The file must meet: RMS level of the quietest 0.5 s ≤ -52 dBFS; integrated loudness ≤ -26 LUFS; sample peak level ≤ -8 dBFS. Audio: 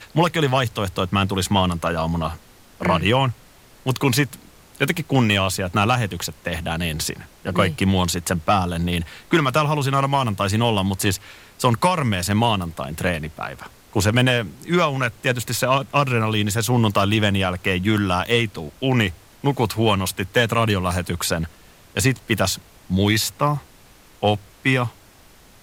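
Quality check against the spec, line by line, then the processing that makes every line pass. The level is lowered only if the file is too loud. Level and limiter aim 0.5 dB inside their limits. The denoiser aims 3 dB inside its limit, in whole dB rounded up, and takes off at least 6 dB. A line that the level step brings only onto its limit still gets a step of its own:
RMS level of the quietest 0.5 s -49 dBFS: fail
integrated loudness -21.0 LUFS: fail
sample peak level -5.0 dBFS: fail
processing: gain -5.5 dB

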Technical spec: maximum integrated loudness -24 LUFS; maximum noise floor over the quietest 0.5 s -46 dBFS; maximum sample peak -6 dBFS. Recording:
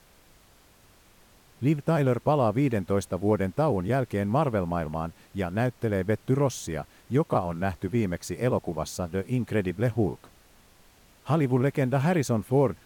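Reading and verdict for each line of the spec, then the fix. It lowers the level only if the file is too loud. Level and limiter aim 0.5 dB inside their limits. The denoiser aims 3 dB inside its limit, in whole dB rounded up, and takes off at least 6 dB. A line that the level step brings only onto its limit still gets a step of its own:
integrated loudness -27.0 LUFS: OK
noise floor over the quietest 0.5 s -57 dBFS: OK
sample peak -12.0 dBFS: OK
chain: none

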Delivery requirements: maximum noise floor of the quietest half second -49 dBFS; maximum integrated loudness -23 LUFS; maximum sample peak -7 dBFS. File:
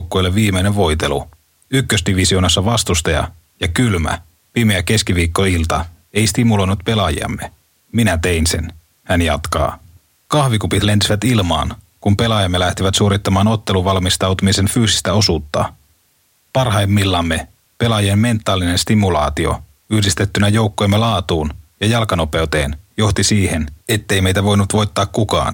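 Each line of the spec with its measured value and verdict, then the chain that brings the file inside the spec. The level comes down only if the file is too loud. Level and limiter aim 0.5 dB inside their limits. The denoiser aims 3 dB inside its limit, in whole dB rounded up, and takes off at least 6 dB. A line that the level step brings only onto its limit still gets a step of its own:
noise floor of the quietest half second -58 dBFS: OK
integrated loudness -16.0 LUFS: fail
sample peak -4.5 dBFS: fail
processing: gain -7.5 dB

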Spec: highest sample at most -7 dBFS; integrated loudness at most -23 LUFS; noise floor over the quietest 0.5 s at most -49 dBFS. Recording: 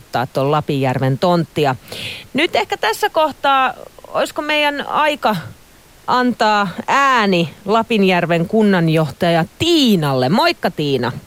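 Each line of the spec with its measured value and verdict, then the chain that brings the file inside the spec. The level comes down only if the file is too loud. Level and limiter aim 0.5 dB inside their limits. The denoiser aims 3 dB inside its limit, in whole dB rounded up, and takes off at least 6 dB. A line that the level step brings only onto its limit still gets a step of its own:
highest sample -4.0 dBFS: fail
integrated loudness -16.0 LUFS: fail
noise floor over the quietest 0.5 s -45 dBFS: fail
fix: gain -7.5 dB

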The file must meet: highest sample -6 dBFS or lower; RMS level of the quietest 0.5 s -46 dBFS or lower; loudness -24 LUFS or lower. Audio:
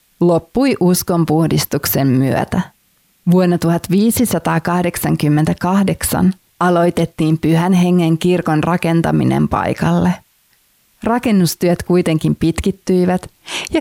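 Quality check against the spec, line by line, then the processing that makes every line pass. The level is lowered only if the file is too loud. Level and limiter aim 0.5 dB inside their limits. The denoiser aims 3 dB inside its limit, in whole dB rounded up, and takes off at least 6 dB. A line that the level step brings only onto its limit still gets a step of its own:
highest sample -5.5 dBFS: fail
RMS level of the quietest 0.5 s -57 dBFS: OK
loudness -15.0 LUFS: fail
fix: gain -9.5 dB

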